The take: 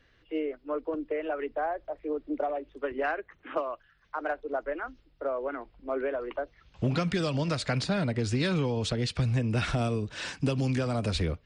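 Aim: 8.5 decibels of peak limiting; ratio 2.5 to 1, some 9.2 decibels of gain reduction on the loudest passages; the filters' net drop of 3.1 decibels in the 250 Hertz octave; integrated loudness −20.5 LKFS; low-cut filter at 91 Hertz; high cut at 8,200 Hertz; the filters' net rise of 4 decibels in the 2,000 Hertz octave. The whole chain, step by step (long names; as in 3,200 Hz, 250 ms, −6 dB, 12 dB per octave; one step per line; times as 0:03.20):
high-pass filter 91 Hz
low-pass filter 8,200 Hz
parametric band 250 Hz −4 dB
parametric band 2,000 Hz +5.5 dB
downward compressor 2.5 to 1, threshold −39 dBFS
level +20.5 dB
brickwall limiter −10 dBFS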